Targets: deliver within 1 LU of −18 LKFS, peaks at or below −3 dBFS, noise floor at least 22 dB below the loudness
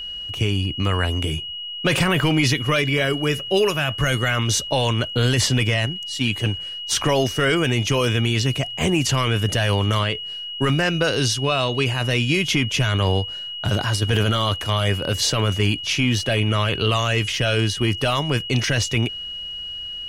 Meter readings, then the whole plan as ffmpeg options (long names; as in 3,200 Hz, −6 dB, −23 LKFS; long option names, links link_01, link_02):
interfering tone 2,900 Hz; level of the tone −29 dBFS; integrated loudness −21.0 LKFS; sample peak −8.0 dBFS; target loudness −18.0 LKFS
→ -af "bandreject=frequency=2900:width=30"
-af "volume=3dB"